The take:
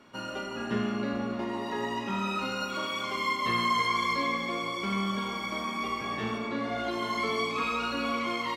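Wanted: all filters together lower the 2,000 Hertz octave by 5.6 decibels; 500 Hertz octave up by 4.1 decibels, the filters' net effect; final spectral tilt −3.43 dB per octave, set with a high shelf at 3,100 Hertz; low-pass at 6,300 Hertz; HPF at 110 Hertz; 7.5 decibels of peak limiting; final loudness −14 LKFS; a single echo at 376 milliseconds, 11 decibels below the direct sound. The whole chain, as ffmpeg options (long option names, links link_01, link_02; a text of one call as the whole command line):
ffmpeg -i in.wav -af "highpass=110,lowpass=6300,equalizer=frequency=500:width_type=o:gain=5.5,equalizer=frequency=2000:width_type=o:gain=-5.5,highshelf=frequency=3100:gain=-3.5,alimiter=level_in=0.5dB:limit=-24dB:level=0:latency=1,volume=-0.5dB,aecho=1:1:376:0.282,volume=19dB" out.wav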